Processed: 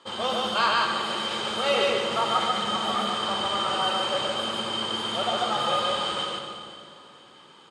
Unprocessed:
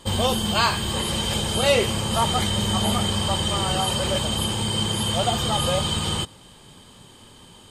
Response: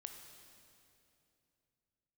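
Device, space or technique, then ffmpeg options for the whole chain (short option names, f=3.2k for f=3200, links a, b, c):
station announcement: -filter_complex "[0:a]highpass=340,lowpass=4.7k,equalizer=f=1.3k:t=o:w=0.37:g=9,aecho=1:1:142.9|242:0.891|0.251[a];[1:a]atrim=start_sample=2205[b];[a][b]afir=irnorm=-1:irlink=0"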